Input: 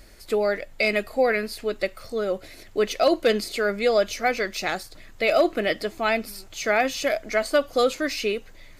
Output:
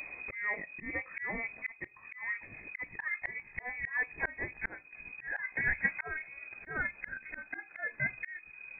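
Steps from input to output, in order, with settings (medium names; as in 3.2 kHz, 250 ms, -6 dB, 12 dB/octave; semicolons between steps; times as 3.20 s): pitch bend over the whole clip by +8 st starting unshifted; frequency inversion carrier 2.5 kHz; slow attack 788 ms; trim +3.5 dB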